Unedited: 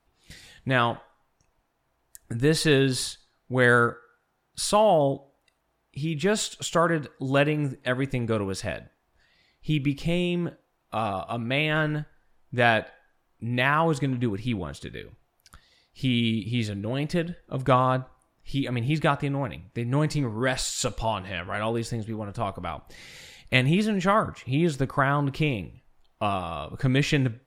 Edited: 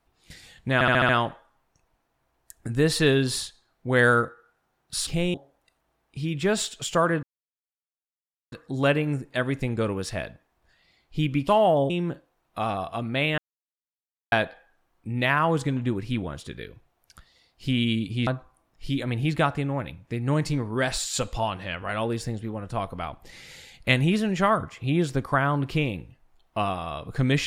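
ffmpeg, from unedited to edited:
ffmpeg -i in.wav -filter_complex "[0:a]asplit=14[link_01][link_02][link_03][link_04][link_05][link_06][link_07][link_08][link_09][link_10][link_11][link_12][link_13][link_14];[link_01]atrim=end=0.812[link_15];[link_02]atrim=start=0.738:end=0.812[link_16];[link_03]atrim=start=0.738:end=0.812[link_17];[link_04]atrim=start=0.738:end=0.812[link_18];[link_05]atrim=start=0.738:end=0.812[link_19];[link_06]atrim=start=0.738:end=4.722[link_20];[link_07]atrim=start=9.988:end=10.262[link_21];[link_08]atrim=start=5.138:end=7.03,asetpts=PTS-STARTPTS,afade=type=out:start_time=1.888:duration=0.004:curve=hsin,apad=pad_dur=1.29[link_22];[link_09]atrim=start=7.03:end=9.992,asetpts=PTS-STARTPTS,afade=type=in:duration=0.004:curve=hsin[link_23];[link_10]atrim=start=4.718:end=5.142[link_24];[link_11]atrim=start=10.258:end=11.74,asetpts=PTS-STARTPTS,afade=type=out:start_time=1.478:duration=0.004:curve=hsin[link_25];[link_12]atrim=start=11.74:end=12.68,asetpts=PTS-STARTPTS,volume=0[link_26];[link_13]atrim=start=12.68:end=16.632,asetpts=PTS-STARTPTS,afade=type=in:duration=0.004:curve=hsin[link_27];[link_14]atrim=start=17.918[link_28];[link_15][link_16]acrossfade=duration=0.004:curve1=hsin:curve2=hsin[link_29];[link_29][link_17]acrossfade=duration=0.004:curve1=hsin:curve2=hsin[link_30];[link_30][link_18]acrossfade=duration=0.004:curve1=hsin:curve2=hsin[link_31];[link_31][link_19]acrossfade=duration=0.004:curve1=hsin:curve2=hsin[link_32];[link_32][link_20]acrossfade=duration=0.004:curve1=hsin:curve2=hsin[link_33];[link_33][link_21]acrossfade=duration=0.004:curve1=hsin:curve2=hsin[link_34];[link_22][link_23]concat=n=2:v=0:a=1[link_35];[link_34][link_35]acrossfade=duration=0.004:curve1=hsin:curve2=hsin[link_36];[link_36][link_24]acrossfade=duration=0.004:curve1=hsin:curve2=hsin[link_37];[link_25][link_26][link_27]concat=n=3:v=0:a=1[link_38];[link_37][link_38]acrossfade=duration=0.004:curve1=hsin:curve2=hsin[link_39];[link_39][link_28]acrossfade=duration=0.004:curve1=hsin:curve2=hsin" out.wav

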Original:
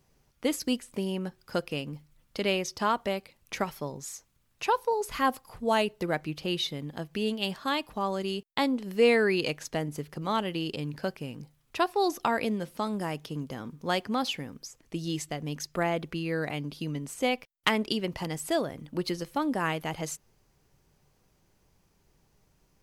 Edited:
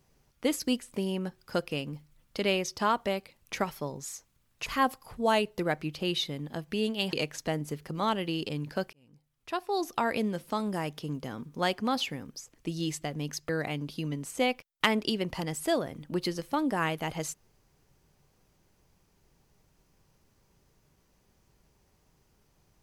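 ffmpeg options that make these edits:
ffmpeg -i in.wav -filter_complex "[0:a]asplit=5[link_01][link_02][link_03][link_04][link_05];[link_01]atrim=end=4.662[link_06];[link_02]atrim=start=5.088:end=7.562[link_07];[link_03]atrim=start=9.398:end=11.2,asetpts=PTS-STARTPTS,afade=type=out:start_time=1.798:duration=0.004:curve=hsin[link_08];[link_04]atrim=start=11.2:end=15.762,asetpts=PTS-STARTPTS,afade=type=in:duration=1.31[link_09];[link_05]atrim=start=16.318[link_10];[link_06][link_07]acrossfade=duration=0.004:curve1=hsin:curve2=hsin[link_11];[link_08][link_09]concat=n=2:v=0:a=1[link_12];[link_11][link_12]acrossfade=duration=0.004:curve1=hsin:curve2=hsin[link_13];[link_13][link_10]acrossfade=duration=0.004:curve1=hsin:curve2=hsin" out.wav

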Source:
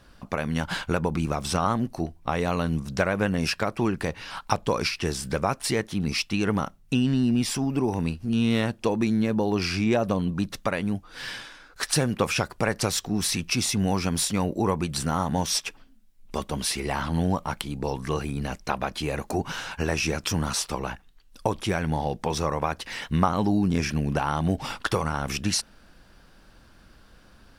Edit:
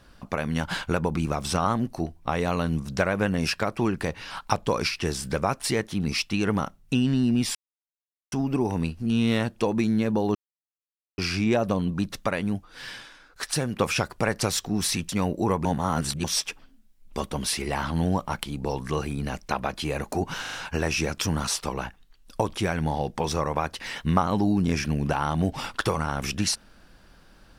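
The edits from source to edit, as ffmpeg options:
ffmpeg -i in.wav -filter_complex "[0:a]asplit=11[link_01][link_02][link_03][link_04][link_05][link_06][link_07][link_08][link_09][link_10][link_11];[link_01]atrim=end=7.55,asetpts=PTS-STARTPTS,afade=type=out:start_time=7.546:duration=0.004:curve=hsin,apad=pad_dur=0.77[link_12];[link_02]atrim=start=7.55:end=9.58,asetpts=PTS-STARTPTS,afade=type=in:duration=0.004:curve=hsin,afade=type=out:start_time=2.026:duration=0.004:curve=hsin,apad=pad_dur=0.83[link_13];[link_03]atrim=start=9.58:end=11.052,asetpts=PTS-STARTPTS,afade=type=in:duration=0.004:curve=hsin[link_14];[link_04]atrim=start=11.048:end=12.162,asetpts=PTS-STARTPTS,volume=-3.5dB[link_15];[link_05]atrim=start=12.158:end=13.492[link_16];[link_06]atrim=start=14.268:end=14.832[link_17];[link_07]atrim=start=14.828:end=15.422,asetpts=PTS-STARTPTS,areverse[link_18];[link_08]atrim=start=15.418:end=19.632[link_19];[link_09]atrim=start=19.588:end=19.632[link_20];[link_10]atrim=start=19.588:end=19.632[link_21];[link_11]atrim=start=19.588[link_22];[link_12][link_13][link_14]concat=n=3:v=0:a=1[link_23];[link_23][link_15]acrossfade=duration=0.004:curve1=hsin:curve2=hsin[link_24];[link_24][link_16]acrossfade=duration=0.004:curve1=hsin:curve2=hsin[link_25];[link_25][link_17]acrossfade=duration=0.004:curve1=hsin:curve2=hsin[link_26];[link_26][link_18]acrossfade=duration=0.004:curve1=hsin:curve2=hsin[link_27];[link_27][link_19]acrossfade=duration=0.004:curve1=hsin:curve2=hsin[link_28];[link_28][link_20]acrossfade=duration=0.004:curve1=hsin:curve2=hsin[link_29];[link_29][link_21]acrossfade=duration=0.004:curve1=hsin:curve2=hsin[link_30];[link_30][link_22]acrossfade=duration=0.004:curve1=hsin:curve2=hsin" out.wav

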